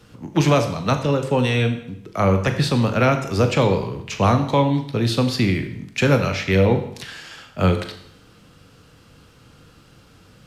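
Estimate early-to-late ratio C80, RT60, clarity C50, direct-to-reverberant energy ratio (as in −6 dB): 12.0 dB, 0.70 s, 10.0 dB, 6.0 dB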